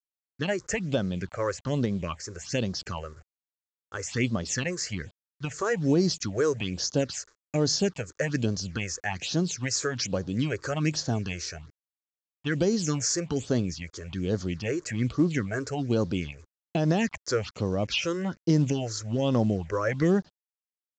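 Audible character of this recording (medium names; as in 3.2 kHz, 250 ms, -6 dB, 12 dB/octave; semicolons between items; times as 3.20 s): a quantiser's noise floor 10-bit, dither none; phasing stages 6, 1.2 Hz, lowest notch 190–2500 Hz; µ-law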